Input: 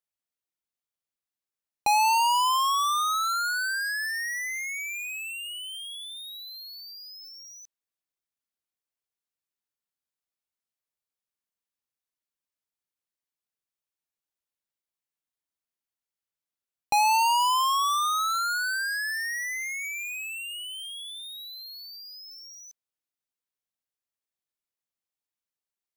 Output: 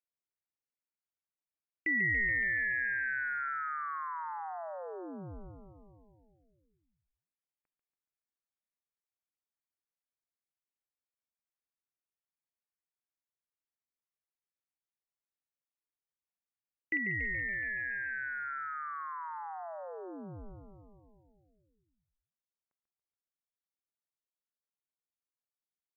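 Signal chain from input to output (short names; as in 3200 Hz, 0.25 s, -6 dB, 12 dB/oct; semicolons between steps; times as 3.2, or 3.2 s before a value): HPF 210 Hz 6 dB/oct, from 16.97 s 1400 Hz; frequency-shifting echo 0.141 s, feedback 61%, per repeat -74 Hz, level -8 dB; inverted band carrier 2800 Hz; gain -8.5 dB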